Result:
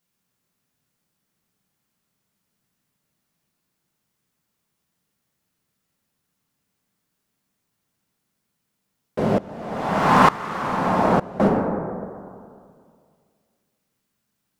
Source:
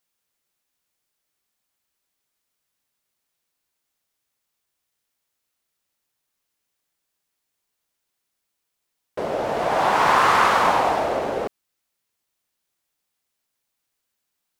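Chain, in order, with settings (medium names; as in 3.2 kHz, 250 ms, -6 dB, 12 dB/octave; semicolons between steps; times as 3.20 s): octave divider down 1 oct, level -4 dB; peaking EQ 180 Hz +14 dB 1.4 oct; plate-style reverb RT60 2.2 s, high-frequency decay 0.3×, DRR -2 dB; 9.38–11.40 s: sawtooth tremolo in dB swelling 1.1 Hz, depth 22 dB; trim -1 dB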